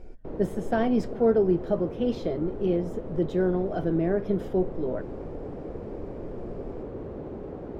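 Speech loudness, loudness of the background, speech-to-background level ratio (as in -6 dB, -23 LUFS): -27.0 LUFS, -38.0 LUFS, 11.0 dB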